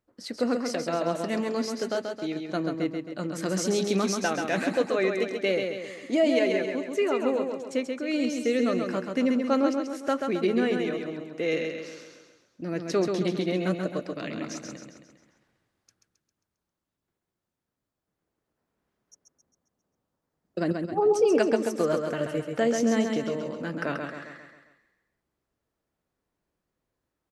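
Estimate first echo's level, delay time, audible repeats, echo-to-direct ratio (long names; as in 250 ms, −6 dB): −5.0 dB, 134 ms, 5, −4.0 dB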